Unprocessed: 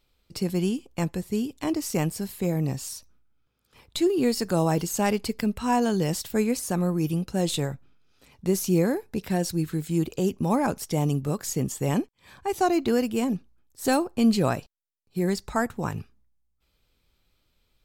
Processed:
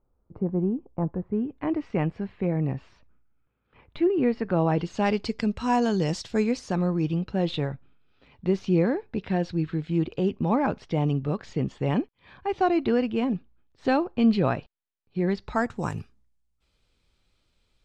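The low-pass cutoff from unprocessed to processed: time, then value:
low-pass 24 dB/octave
1.02 s 1.1 kHz
1.81 s 2.5 kHz
4.45 s 2.5 kHz
5.36 s 6.1 kHz
6.27 s 6.1 kHz
7.40 s 3.6 kHz
15.37 s 3.6 kHz
15.88 s 9.5 kHz

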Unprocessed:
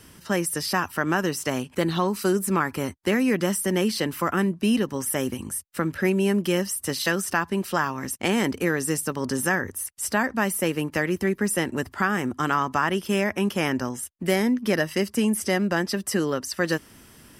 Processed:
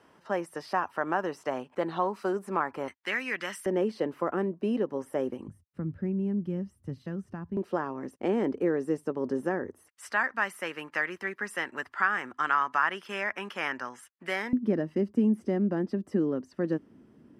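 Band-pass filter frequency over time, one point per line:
band-pass filter, Q 1.3
750 Hz
from 2.88 s 1.9 kHz
from 3.66 s 510 Hz
from 5.48 s 110 Hz
from 7.57 s 420 Hz
from 9.89 s 1.5 kHz
from 14.53 s 270 Hz

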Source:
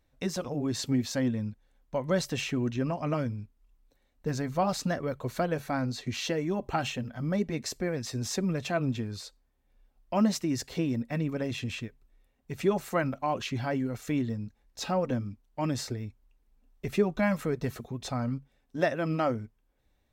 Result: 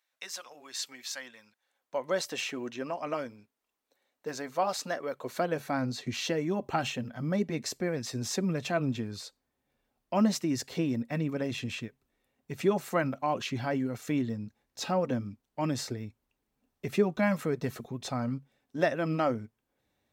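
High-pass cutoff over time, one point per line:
1.42 s 1.3 kHz
2.00 s 410 Hz
5.06 s 410 Hz
5.83 s 120 Hz

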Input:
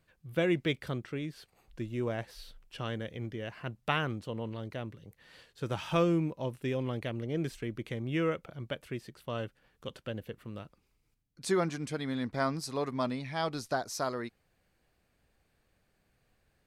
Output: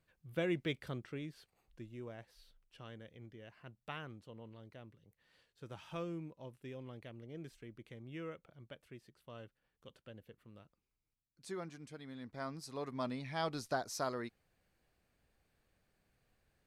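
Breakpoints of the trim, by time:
1.21 s -7 dB
2.13 s -15 dB
12.15 s -15 dB
13.31 s -4.5 dB

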